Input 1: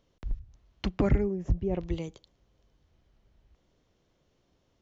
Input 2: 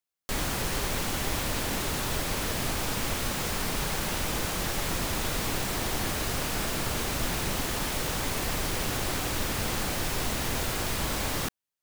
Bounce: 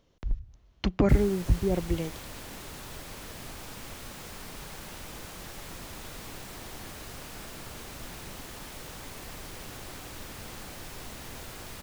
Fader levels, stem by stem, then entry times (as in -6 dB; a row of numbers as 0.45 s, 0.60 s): +3.0 dB, -12.5 dB; 0.00 s, 0.80 s